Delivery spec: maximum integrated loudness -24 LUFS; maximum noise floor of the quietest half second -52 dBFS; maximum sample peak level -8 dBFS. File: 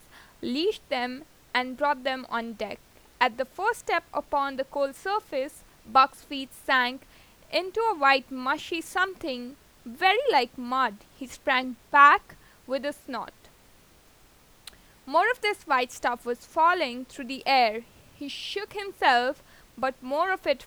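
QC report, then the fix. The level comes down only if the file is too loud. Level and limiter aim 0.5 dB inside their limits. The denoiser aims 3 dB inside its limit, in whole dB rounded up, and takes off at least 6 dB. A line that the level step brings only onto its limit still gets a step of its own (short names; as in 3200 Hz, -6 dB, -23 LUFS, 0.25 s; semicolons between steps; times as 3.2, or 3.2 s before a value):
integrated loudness -26.0 LUFS: OK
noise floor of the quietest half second -57 dBFS: OK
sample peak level -4.5 dBFS: fail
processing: limiter -8.5 dBFS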